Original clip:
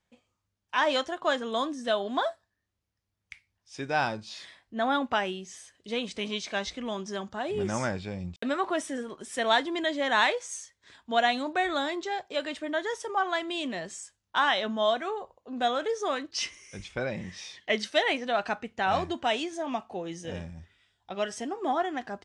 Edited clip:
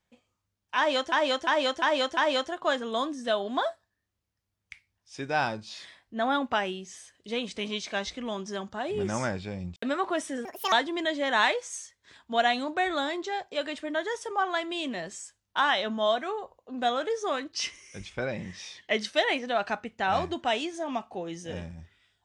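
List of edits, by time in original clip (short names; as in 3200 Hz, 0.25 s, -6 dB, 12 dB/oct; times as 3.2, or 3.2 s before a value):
0.77–1.12 loop, 5 plays
9.05–9.51 speed 169%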